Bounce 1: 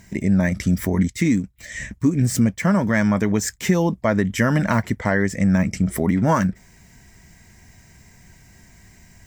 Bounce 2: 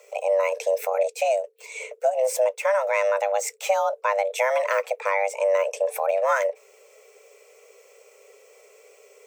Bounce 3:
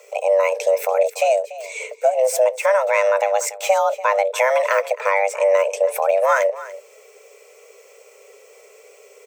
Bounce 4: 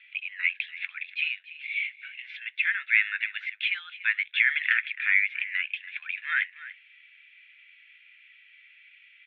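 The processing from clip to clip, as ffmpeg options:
ffmpeg -i in.wav -af "afreqshift=390,volume=-4dB" out.wav
ffmpeg -i in.wav -af "aecho=1:1:289:0.15,volume=5dB" out.wav
ffmpeg -i in.wav -af "asuperpass=centerf=2400:order=12:qfactor=1.2,volume=2.5dB" out.wav

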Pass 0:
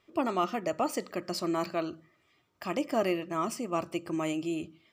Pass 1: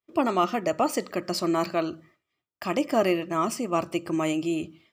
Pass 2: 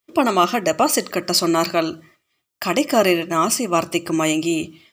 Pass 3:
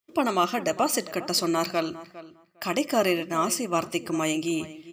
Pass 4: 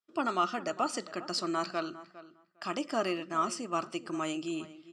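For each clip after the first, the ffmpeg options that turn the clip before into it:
ffmpeg -i in.wav -af "agate=range=-33dB:threshold=-56dB:ratio=3:detection=peak,volume=5.5dB" out.wav
ffmpeg -i in.wav -af "highshelf=frequency=2700:gain=10,volume=6dB" out.wav
ffmpeg -i in.wav -filter_complex "[0:a]asplit=2[link_01][link_02];[link_02]adelay=405,lowpass=frequency=2700:poles=1,volume=-16dB,asplit=2[link_03][link_04];[link_04]adelay=405,lowpass=frequency=2700:poles=1,volume=0.16[link_05];[link_01][link_03][link_05]amix=inputs=3:normalize=0,volume=-7dB" out.wav
ffmpeg -i in.wav -af "highpass=160,equalizer=frequency=520:width_type=q:width=4:gain=-4,equalizer=frequency=1400:width_type=q:width=4:gain=9,equalizer=frequency=2200:width_type=q:width=4:gain=-7,equalizer=frequency=6600:width_type=q:width=4:gain=-5,lowpass=frequency=7900:width=0.5412,lowpass=frequency=7900:width=1.3066,volume=-7.5dB" out.wav

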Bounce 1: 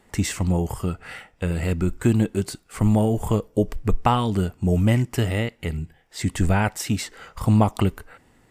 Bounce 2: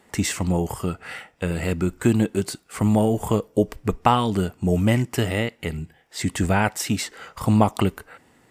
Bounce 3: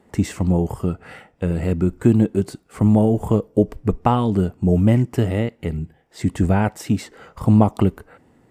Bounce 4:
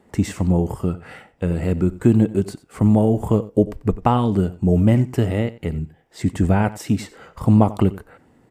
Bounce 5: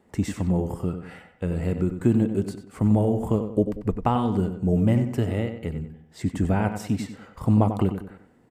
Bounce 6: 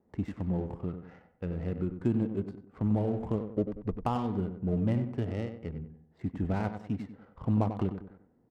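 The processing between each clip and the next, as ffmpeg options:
ffmpeg -i in.wav -af "highpass=frequency=160:poles=1,volume=2.5dB" out.wav
ffmpeg -i in.wav -af "tiltshelf=frequency=970:gain=7,volume=-2dB" out.wav
ffmpeg -i in.wav -af "aecho=1:1:91:0.126" out.wav
ffmpeg -i in.wav -filter_complex "[0:a]asplit=2[link_01][link_02];[link_02]adelay=95,lowpass=frequency=3100:poles=1,volume=-8.5dB,asplit=2[link_03][link_04];[link_04]adelay=95,lowpass=frequency=3100:poles=1,volume=0.39,asplit=2[link_05][link_06];[link_06]adelay=95,lowpass=frequency=3100:poles=1,volume=0.39,asplit=2[link_07][link_08];[link_08]adelay=95,lowpass=frequency=3100:poles=1,volume=0.39[link_09];[link_01][link_03][link_05][link_07][link_09]amix=inputs=5:normalize=0,volume=-5.5dB" out.wav
ffmpeg -i in.wav -af "adynamicsmooth=sensitivity=5:basefreq=1000,volume=-8dB" out.wav

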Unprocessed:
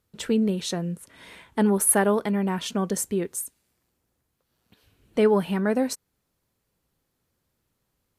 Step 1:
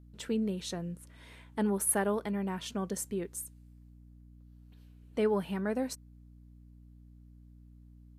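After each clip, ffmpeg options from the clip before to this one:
ffmpeg -i in.wav -af "aeval=exprs='val(0)+0.00631*(sin(2*PI*60*n/s)+sin(2*PI*2*60*n/s)/2+sin(2*PI*3*60*n/s)/3+sin(2*PI*4*60*n/s)/4+sin(2*PI*5*60*n/s)/5)':channel_layout=same,volume=-9dB" out.wav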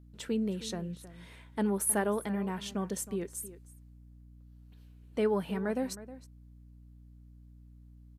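ffmpeg -i in.wav -filter_complex "[0:a]asplit=2[link_01][link_02];[link_02]adelay=314.9,volume=-15dB,highshelf=frequency=4000:gain=-7.08[link_03];[link_01][link_03]amix=inputs=2:normalize=0" out.wav

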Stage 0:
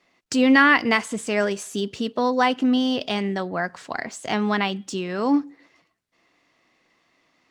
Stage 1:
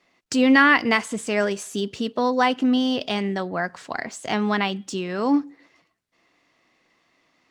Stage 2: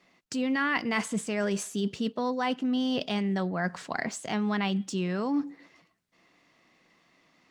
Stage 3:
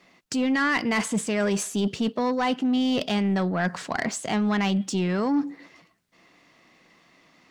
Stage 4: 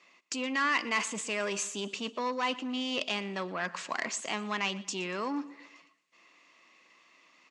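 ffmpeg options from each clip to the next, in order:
ffmpeg -i in.wav -af anull out.wav
ffmpeg -i in.wav -af "equalizer=frequency=180:width_type=o:width=0.57:gain=7,areverse,acompressor=threshold=-26dB:ratio=6,areverse" out.wav
ffmpeg -i in.wav -af "asoftclip=type=tanh:threshold=-23.5dB,volume=6.5dB" out.wav
ffmpeg -i in.wav -af "highpass=390,equalizer=frequency=450:width_type=q:width=4:gain=-3,equalizer=frequency=740:width_type=q:width=4:gain=-7,equalizer=frequency=1100:width_type=q:width=4:gain=5,equalizer=frequency=1500:width_type=q:width=4:gain=-3,equalizer=frequency=2600:width_type=q:width=4:gain=7,equalizer=frequency=6900:width_type=q:width=4:gain=5,lowpass=frequency=8200:width=0.5412,lowpass=frequency=8200:width=1.3066,aecho=1:1:119|238|357|476:0.1|0.048|0.023|0.0111,volume=-4.5dB" out.wav

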